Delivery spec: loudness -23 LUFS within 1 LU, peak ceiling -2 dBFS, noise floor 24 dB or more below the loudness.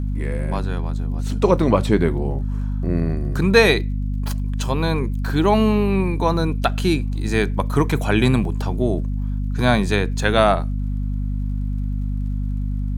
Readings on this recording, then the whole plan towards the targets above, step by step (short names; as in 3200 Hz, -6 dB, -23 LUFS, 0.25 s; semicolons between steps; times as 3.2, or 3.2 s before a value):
ticks 35/s; hum 50 Hz; harmonics up to 250 Hz; hum level -20 dBFS; loudness -21.0 LUFS; peak -1.0 dBFS; loudness target -23.0 LUFS
-> de-click; de-hum 50 Hz, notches 5; gain -2 dB